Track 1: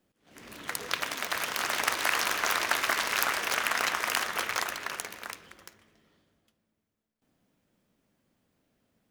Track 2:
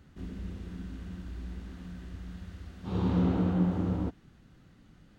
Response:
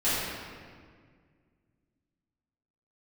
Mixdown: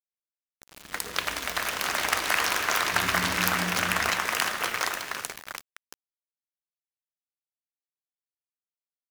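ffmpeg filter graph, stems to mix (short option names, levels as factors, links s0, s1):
-filter_complex "[0:a]adelay=250,volume=1.19,asplit=2[s0][s1];[s1]volume=0.0794[s2];[1:a]volume=0.299,asplit=2[s3][s4];[s4]volume=0.0668[s5];[2:a]atrim=start_sample=2205[s6];[s2][s5]amix=inputs=2:normalize=0[s7];[s7][s6]afir=irnorm=-1:irlink=0[s8];[s0][s3][s8]amix=inputs=3:normalize=0,aeval=exprs='val(0)*gte(abs(val(0)),0.0158)':c=same"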